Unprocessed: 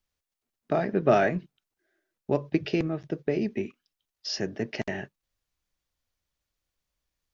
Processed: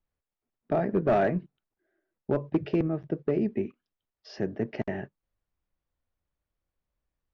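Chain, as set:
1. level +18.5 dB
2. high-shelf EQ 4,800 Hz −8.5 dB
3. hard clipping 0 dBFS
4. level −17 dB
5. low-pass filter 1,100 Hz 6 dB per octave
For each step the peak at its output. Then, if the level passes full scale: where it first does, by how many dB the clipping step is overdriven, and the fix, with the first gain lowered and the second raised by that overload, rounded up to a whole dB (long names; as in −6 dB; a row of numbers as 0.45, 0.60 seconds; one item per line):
+10.0, +10.0, 0.0, −17.0, −17.0 dBFS
step 1, 10.0 dB
step 1 +8.5 dB, step 4 −7 dB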